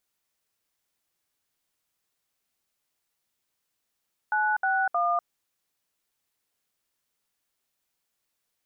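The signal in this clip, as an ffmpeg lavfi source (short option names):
-f lavfi -i "aevalsrc='0.0596*clip(min(mod(t,0.312),0.246-mod(t,0.312))/0.002,0,1)*(eq(floor(t/0.312),0)*(sin(2*PI*852*mod(t,0.312))+sin(2*PI*1477*mod(t,0.312)))+eq(floor(t/0.312),1)*(sin(2*PI*770*mod(t,0.312))+sin(2*PI*1477*mod(t,0.312)))+eq(floor(t/0.312),2)*(sin(2*PI*697*mod(t,0.312))+sin(2*PI*1209*mod(t,0.312))))':d=0.936:s=44100"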